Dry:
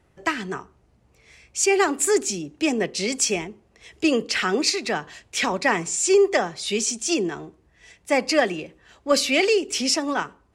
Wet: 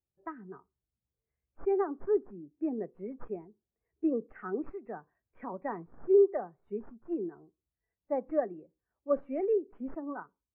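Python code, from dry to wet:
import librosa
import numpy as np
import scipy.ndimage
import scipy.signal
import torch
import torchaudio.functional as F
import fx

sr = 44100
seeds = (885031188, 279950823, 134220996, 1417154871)

y = fx.tracing_dist(x, sr, depth_ms=0.061)
y = scipy.signal.sosfilt(scipy.signal.butter(4, 1500.0, 'lowpass', fs=sr, output='sos'), y)
y = fx.spectral_expand(y, sr, expansion=1.5)
y = F.gain(torch.from_numpy(y), -6.5).numpy()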